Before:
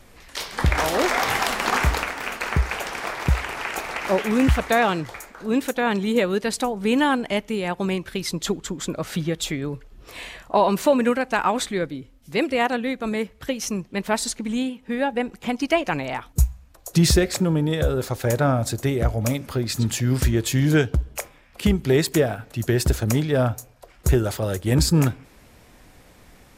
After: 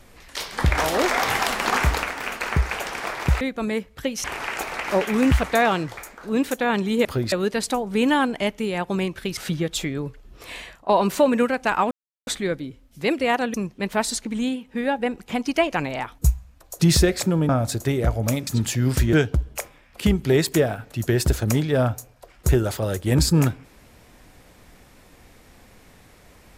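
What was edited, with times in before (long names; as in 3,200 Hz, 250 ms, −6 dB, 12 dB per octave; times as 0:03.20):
0:08.27–0:09.04: remove
0:10.30–0:10.56: fade out, to −15 dB
0:11.58: splice in silence 0.36 s
0:12.85–0:13.68: move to 0:03.41
0:17.63–0:18.47: remove
0:19.45–0:19.72: move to 0:06.22
0:20.38–0:20.73: remove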